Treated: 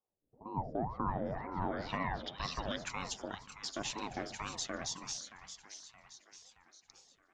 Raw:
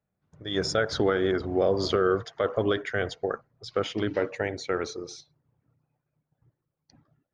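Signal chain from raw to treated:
first-order pre-emphasis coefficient 0.8
in parallel at −3 dB: brickwall limiter −32.5 dBFS, peak gain reduction 9.5 dB
on the sum: echo with a time of its own for lows and highs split 600 Hz, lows 83 ms, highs 623 ms, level −10 dB
low-pass filter sweep 400 Hz → 7,200 Hz, 0:00.67–0:02.87
ring modulator whose carrier an LFO sweeps 400 Hz, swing 65%, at 2 Hz
level −1 dB

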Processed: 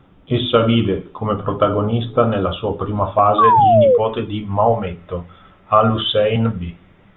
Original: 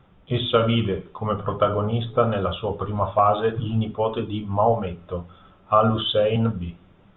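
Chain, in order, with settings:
parametric band 290 Hz +8.5 dB 0.47 octaves, from 0:03.44 2,000 Hz
0:03.38–0:03.98: sound drawn into the spectrogram fall 460–1,200 Hz −15 dBFS
level +4 dB

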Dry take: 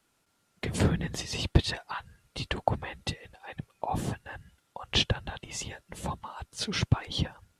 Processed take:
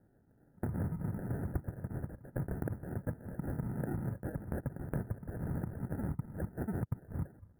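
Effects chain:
delay with pitch and tempo change per echo 371 ms, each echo +3 semitones, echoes 3, each echo −6 dB
decimation without filtering 40×
elliptic band-stop filter 1,700–10,000 Hz, stop band 40 dB
parametric band 120 Hz +10.5 dB 2.4 octaves
downward compressor 12 to 1, threshold −33 dBFS, peak gain reduction 27 dB

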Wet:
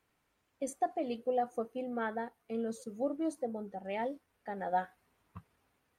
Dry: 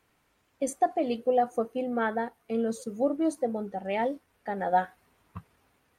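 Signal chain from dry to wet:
0:03.30–0:03.84: dynamic equaliser 2,800 Hz, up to −5 dB, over −49 dBFS, Q 0.84
level −7.5 dB

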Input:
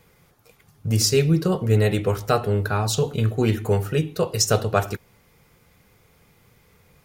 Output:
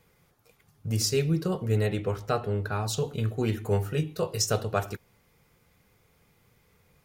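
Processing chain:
0:01.86–0:02.72: high-shelf EQ 7,400 Hz −10.5 dB
0:03.69–0:04.48: double-tracking delay 20 ms −8 dB
level −7 dB

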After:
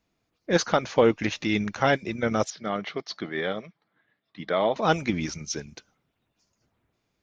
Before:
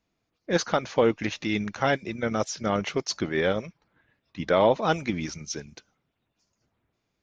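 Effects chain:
0:02.50–0:04.76: loudspeaker in its box 240–4,000 Hz, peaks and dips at 260 Hz −6 dB, 370 Hz −6 dB, 530 Hz −8 dB, 930 Hz −8 dB, 1,500 Hz −5 dB, 2,600 Hz −10 dB
level +2 dB

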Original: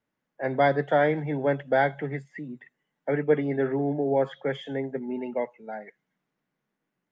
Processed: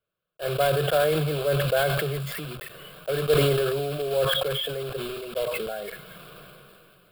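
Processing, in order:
one scale factor per block 3 bits
phaser with its sweep stopped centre 1,300 Hz, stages 8
level that may fall only so fast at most 20 dB per second

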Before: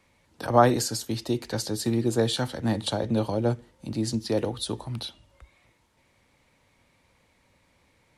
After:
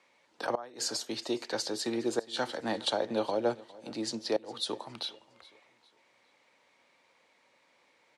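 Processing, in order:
band-pass filter 410–6,500 Hz
gate with flip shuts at −17 dBFS, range −25 dB
repeating echo 410 ms, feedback 36%, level −21 dB

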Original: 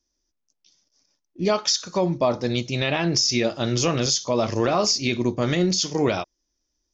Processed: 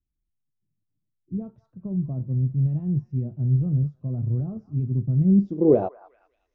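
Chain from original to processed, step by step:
low-pass filter sweep 130 Hz → 2,200 Hz, 0:05.47–0:06.93
echo through a band-pass that steps 206 ms, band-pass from 1,200 Hz, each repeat 0.7 octaves, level −11 dB
speed change +6%

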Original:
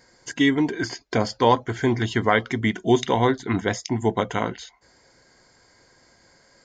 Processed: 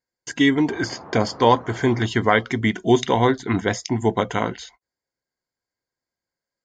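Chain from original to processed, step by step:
noise gate −49 dBFS, range −34 dB
0:00.67–0:02.06: noise in a band 81–1,100 Hz −42 dBFS
level +2 dB

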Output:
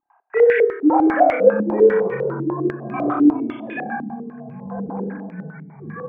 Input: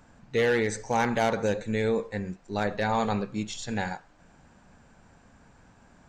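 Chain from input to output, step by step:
three sine waves on the formant tracks
0:02.14–0:02.94: tuned comb filter 230 Hz, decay 0.5 s, harmonics odd, mix 100%
in parallel at −7 dB: soft clipping −24.5 dBFS, distortion −10 dB
on the sum: flutter between parallel walls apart 5.1 metres, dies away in 0.71 s
delay with pitch and tempo change per echo 312 ms, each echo −7 semitones, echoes 3, each echo −6 dB
low-pass on a step sequencer 10 Hz 300–2,300 Hz
level −1 dB

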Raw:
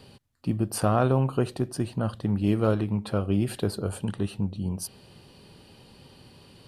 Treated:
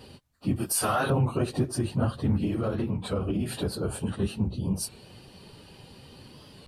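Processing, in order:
random phases in long frames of 50 ms
0:00.56–0:01.11: spectral tilt +4 dB per octave
brickwall limiter −19 dBFS, peak gain reduction 9.5 dB
0:02.40–0:04.22: downward compressor, threshold −27 dBFS, peak gain reduction 5 dB
wow of a warped record 33 1/3 rpm, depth 100 cents
level +2.5 dB

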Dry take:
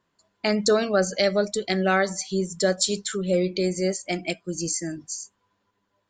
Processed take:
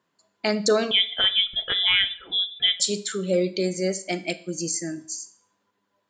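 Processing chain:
high-pass filter 150 Hz 12 dB per octave
0:00.91–0:02.80: voice inversion scrambler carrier 3,700 Hz
four-comb reverb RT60 0.51 s, combs from 28 ms, DRR 14 dB

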